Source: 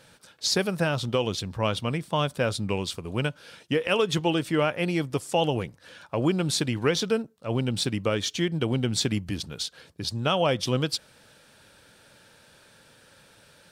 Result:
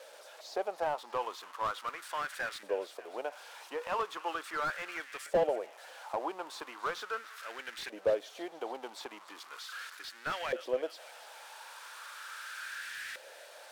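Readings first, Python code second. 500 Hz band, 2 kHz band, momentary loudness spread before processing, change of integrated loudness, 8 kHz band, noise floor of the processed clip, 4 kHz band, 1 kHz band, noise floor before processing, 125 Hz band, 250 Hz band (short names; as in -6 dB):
-8.0 dB, -6.0 dB, 8 LU, -10.5 dB, -15.0 dB, -53 dBFS, -15.0 dB, -4.0 dB, -57 dBFS, -31.0 dB, -21.0 dB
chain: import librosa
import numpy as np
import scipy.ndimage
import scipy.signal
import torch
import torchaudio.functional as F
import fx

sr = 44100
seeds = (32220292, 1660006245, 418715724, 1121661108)

y = x + 0.5 * 10.0 ** (-19.0 / 20.0) * np.diff(np.sign(x), prepend=np.sign(x[:1]))
y = scipy.signal.sosfilt(scipy.signal.butter(4, 320.0, 'highpass', fs=sr, output='sos'), y)
y = fx.filter_lfo_bandpass(y, sr, shape='saw_up', hz=0.38, low_hz=540.0, high_hz=1900.0, q=4.0)
y = fx.echo_wet_highpass(y, sr, ms=294, feedback_pct=59, hz=1600.0, wet_db=-16)
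y = fx.slew_limit(y, sr, full_power_hz=27.0)
y = y * 10.0 ** (3.5 / 20.0)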